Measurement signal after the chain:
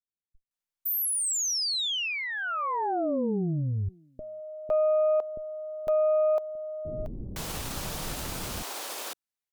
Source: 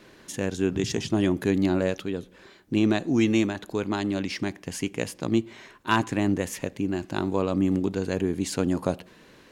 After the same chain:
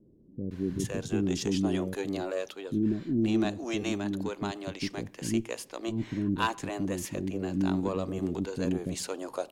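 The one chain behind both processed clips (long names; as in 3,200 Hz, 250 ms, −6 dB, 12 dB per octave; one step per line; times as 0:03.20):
dynamic equaliser 1,900 Hz, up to −5 dB, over −44 dBFS, Q 1.5
harmonic generator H 2 −17 dB, 3 −44 dB, 6 −33 dB, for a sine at −8.5 dBFS
multiband delay without the direct sound lows, highs 510 ms, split 380 Hz
level −2.5 dB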